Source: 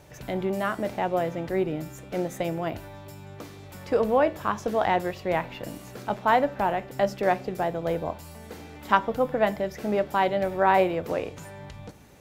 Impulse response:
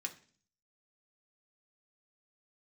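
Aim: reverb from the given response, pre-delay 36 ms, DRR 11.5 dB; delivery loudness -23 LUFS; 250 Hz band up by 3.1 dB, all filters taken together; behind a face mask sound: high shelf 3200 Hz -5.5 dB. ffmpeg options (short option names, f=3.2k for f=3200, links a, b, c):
-filter_complex "[0:a]equalizer=f=250:t=o:g=4.5,asplit=2[a][b];[1:a]atrim=start_sample=2205,adelay=36[c];[b][c]afir=irnorm=-1:irlink=0,volume=-10.5dB[d];[a][d]amix=inputs=2:normalize=0,highshelf=f=3.2k:g=-5.5,volume=2.5dB"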